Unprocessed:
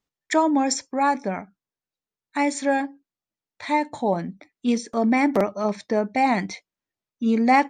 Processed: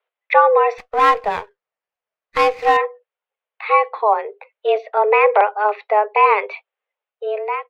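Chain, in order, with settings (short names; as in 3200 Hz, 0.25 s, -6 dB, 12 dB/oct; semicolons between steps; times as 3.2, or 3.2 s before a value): ending faded out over 0.79 s; mistuned SSB +210 Hz 250–3000 Hz; 0.78–2.77 running maximum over 5 samples; gain +7.5 dB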